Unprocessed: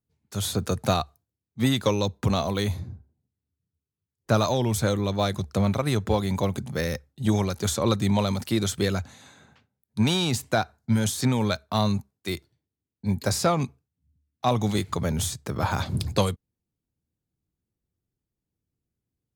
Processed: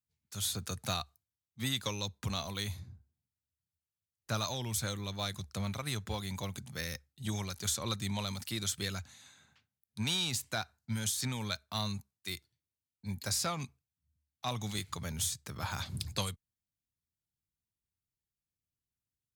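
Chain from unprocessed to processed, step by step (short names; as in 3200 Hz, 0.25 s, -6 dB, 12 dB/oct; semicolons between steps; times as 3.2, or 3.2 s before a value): passive tone stack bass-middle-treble 5-5-5; gain +2.5 dB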